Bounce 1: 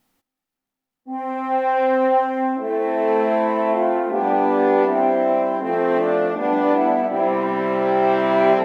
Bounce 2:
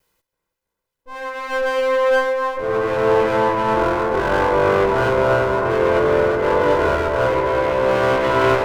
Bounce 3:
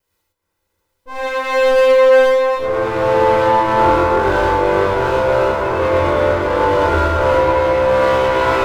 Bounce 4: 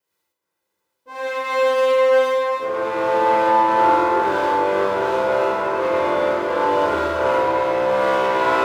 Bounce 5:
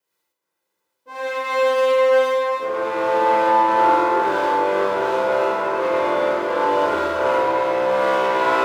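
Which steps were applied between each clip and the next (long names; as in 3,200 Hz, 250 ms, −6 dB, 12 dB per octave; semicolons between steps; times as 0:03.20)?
lower of the sound and its delayed copy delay 2 ms; bucket-brigade delay 326 ms, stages 4,096, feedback 78%, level −9 dB; level +2 dB
automatic gain control gain up to 13 dB; reverb whose tail is shaped and stops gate 140 ms rising, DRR −3.5 dB; level −7 dB
high-pass filter 200 Hz 12 dB per octave; on a send: flutter between parallel walls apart 8.8 metres, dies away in 0.47 s; on the sum: level −5.5 dB
high-pass filter 160 Hz 6 dB per octave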